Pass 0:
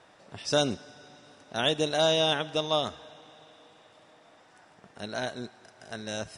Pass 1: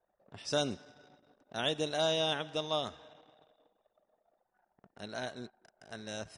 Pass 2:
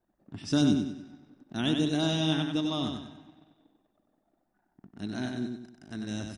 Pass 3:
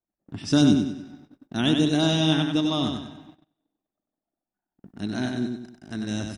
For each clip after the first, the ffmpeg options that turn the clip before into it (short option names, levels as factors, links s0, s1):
-af "anlmdn=0.00398,volume=0.473"
-af "lowshelf=f=390:t=q:w=3:g=9,aecho=1:1:95|190|285|380|475:0.562|0.219|0.0855|0.0334|0.013"
-af "agate=range=0.0891:threshold=0.002:ratio=16:detection=peak,volume=2"